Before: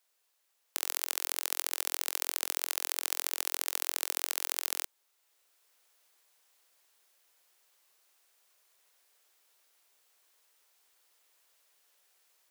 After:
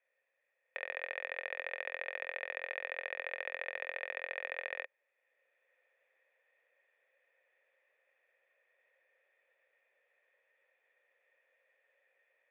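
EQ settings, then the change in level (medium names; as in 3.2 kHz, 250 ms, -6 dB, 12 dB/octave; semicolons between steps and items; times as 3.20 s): cascade formant filter e; bass shelf 130 Hz -7 dB; peaking EQ 310 Hz -9.5 dB 1.7 oct; +17.0 dB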